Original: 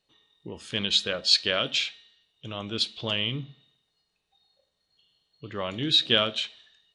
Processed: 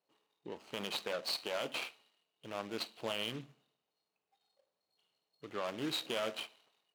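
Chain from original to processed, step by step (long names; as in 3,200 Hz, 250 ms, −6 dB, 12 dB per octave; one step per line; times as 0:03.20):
running median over 25 samples
meter weighting curve A
brickwall limiter −25 dBFS, peak gain reduction 9 dB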